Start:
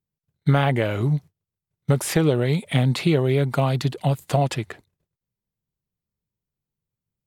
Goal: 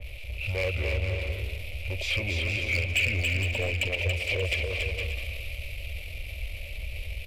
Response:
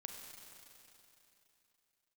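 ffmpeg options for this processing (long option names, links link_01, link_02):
-filter_complex "[0:a]aeval=exprs='val(0)+0.5*0.0596*sgn(val(0))':channel_layout=same,firequalizer=gain_entry='entry(100,0);entry(180,-21);entry(440,-23);entry(840,-2);entry(1300,-23);entry(2400,-24);entry(3500,7);entry(5000,-7);entry(9400,-26);entry(14000,-24)':delay=0.05:min_phase=1,acrossover=split=440|3000[link_01][link_02][link_03];[link_01]acompressor=threshold=-31dB:ratio=2.5[link_04];[link_04][link_02][link_03]amix=inputs=3:normalize=0,asetrate=29433,aresample=44100,atempo=1.49831,asoftclip=type=hard:threshold=-23dB,asplit=2[link_05][link_06];[link_06]aecho=0:1:280|462|580.3|657.2|707.2:0.631|0.398|0.251|0.158|0.1[link_07];[link_05][link_07]amix=inputs=2:normalize=0,adynamicequalizer=threshold=0.00708:dfrequency=2300:dqfactor=0.7:tfrequency=2300:tqfactor=0.7:attack=5:release=100:ratio=0.375:range=2.5:mode=boostabove:tftype=highshelf"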